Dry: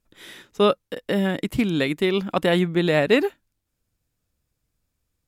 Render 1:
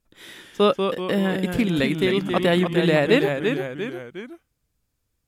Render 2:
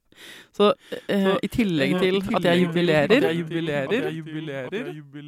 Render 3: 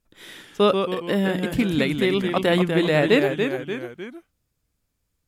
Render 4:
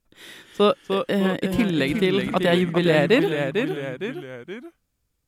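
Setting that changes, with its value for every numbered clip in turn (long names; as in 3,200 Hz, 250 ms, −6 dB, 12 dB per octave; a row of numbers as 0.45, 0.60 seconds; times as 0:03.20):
delay with pitch and tempo change per echo, delay time: 154, 621, 100, 265 milliseconds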